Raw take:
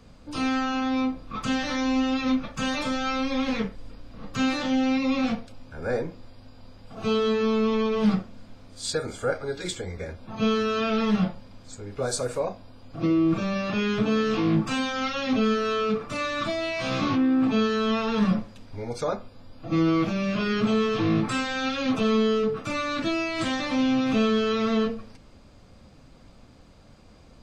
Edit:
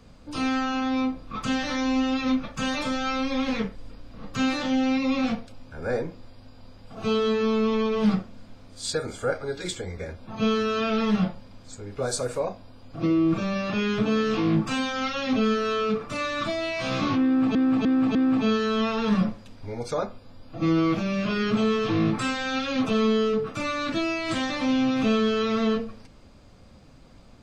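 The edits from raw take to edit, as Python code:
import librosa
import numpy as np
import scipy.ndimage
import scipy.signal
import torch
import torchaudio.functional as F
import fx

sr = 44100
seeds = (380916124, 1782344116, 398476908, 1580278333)

y = fx.edit(x, sr, fx.repeat(start_s=17.25, length_s=0.3, count=4), tone=tone)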